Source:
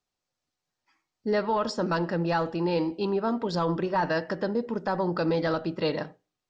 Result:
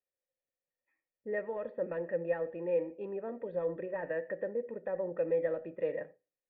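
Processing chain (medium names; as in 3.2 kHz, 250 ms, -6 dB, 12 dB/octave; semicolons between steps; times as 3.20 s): cascade formant filter e; trim +1.5 dB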